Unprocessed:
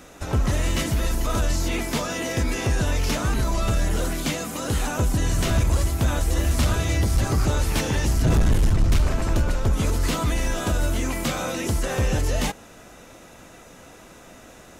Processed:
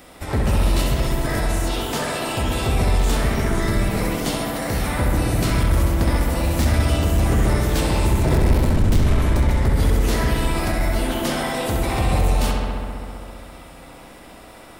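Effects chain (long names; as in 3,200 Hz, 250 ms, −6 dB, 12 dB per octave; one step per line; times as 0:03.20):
formants moved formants +6 semitones
feedback echo with a low-pass in the loop 66 ms, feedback 85%, low-pass 4,700 Hz, level −3.5 dB
soft clipping −7 dBFS, distortion −23 dB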